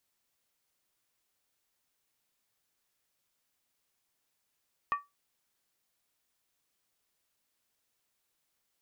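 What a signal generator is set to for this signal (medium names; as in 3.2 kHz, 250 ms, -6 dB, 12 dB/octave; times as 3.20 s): skin hit, lowest mode 1.15 kHz, decay 0.20 s, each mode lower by 9 dB, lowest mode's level -23 dB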